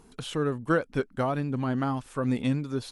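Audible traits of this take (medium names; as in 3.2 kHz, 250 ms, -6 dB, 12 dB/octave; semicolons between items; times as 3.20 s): AC-3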